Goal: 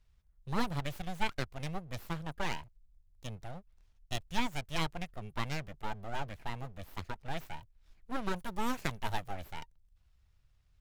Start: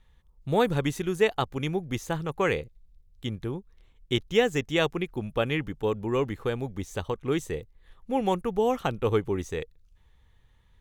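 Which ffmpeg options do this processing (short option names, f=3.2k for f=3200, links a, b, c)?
-filter_complex "[0:a]asettb=1/sr,asplit=3[a][b][c];[a]atrim=end=8.364[d];[b]atrim=start=8.36:end=9.34,asetpts=PTS-STARTPTS,afade=t=in:d=0.004:c=qsin,afade=t=out:st=0.976:d=0.004:c=qsin,highshelf=f=3.2k:g=11.5[e];[c]atrim=start=9.336[f];[d][e]acrossfade=d=0.004:c1=hsin:c2=qsin[g];[g][f]acrossfade=d=0.004:c1=qsin:c2=hsin,acrossover=split=200[h][i];[i]aeval=exprs='abs(val(0))':c=same[j];[h][j]amix=inputs=2:normalize=0,volume=-7dB"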